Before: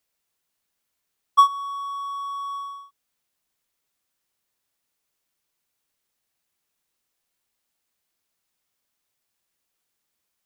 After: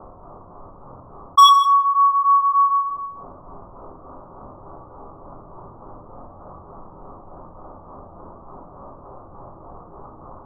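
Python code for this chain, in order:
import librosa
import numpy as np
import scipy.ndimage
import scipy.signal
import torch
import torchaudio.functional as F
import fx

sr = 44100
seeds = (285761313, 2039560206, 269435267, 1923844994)

p1 = scipy.signal.sosfilt(scipy.signal.butter(12, 1200.0, 'lowpass', fs=sr, output='sos'), x)
p2 = fx.hum_notches(p1, sr, base_hz=60, count=7)
p3 = fx.rider(p2, sr, range_db=3, speed_s=2.0)
p4 = p2 + (p3 * librosa.db_to_amplitude(-1.0))
p5 = np.clip(p4, -10.0 ** (-13.5 / 20.0), 10.0 ** (-13.5 / 20.0))
p6 = p5 * (1.0 - 0.83 / 2.0 + 0.83 / 2.0 * np.cos(2.0 * np.pi * 3.4 * (np.arange(len(p5)) / sr)))
p7 = p6 + fx.echo_single(p6, sr, ms=156, db=-21.0, dry=0)
p8 = fx.room_shoebox(p7, sr, seeds[0], volume_m3=56.0, walls='mixed', distance_m=0.98)
p9 = fx.env_flatten(p8, sr, amount_pct=50)
y = p9 * librosa.db_to_amplitude(7.5)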